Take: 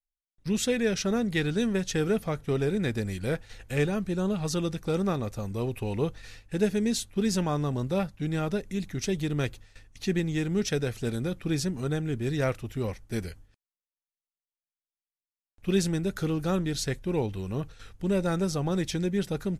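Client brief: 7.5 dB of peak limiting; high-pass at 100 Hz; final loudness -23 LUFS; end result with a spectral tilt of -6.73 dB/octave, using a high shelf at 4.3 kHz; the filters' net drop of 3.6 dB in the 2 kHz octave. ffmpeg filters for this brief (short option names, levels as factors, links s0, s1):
-af "highpass=100,equalizer=f=2000:t=o:g=-3.5,highshelf=f=4300:g=-5.5,volume=2.66,alimiter=limit=0.224:level=0:latency=1"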